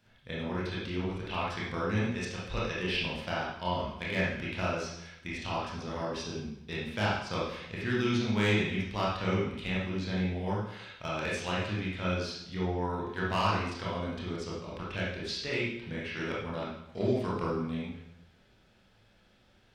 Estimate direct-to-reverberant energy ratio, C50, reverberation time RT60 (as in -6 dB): -6.5 dB, 0.0 dB, 0.80 s